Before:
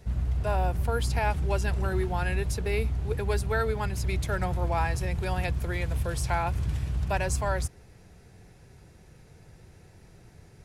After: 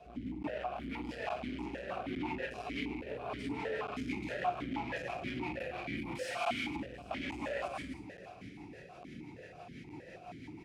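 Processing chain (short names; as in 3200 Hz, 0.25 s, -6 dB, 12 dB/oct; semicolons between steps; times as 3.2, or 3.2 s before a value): overloaded stage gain 32 dB; non-linear reverb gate 0.42 s falling, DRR -6 dB; rotary speaker horn 6 Hz; 6.15–6.76 tilt +3 dB/oct; soft clip -28.5 dBFS, distortion -11 dB; compressor, threshold -36 dBFS, peak gain reduction 6 dB; bell 480 Hz -4.5 dB 0.76 oct; echo 0.797 s -21.5 dB; crackling interface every 0.86 s, samples 512, zero, from 0.43; vowel sequencer 6.3 Hz; gain +16.5 dB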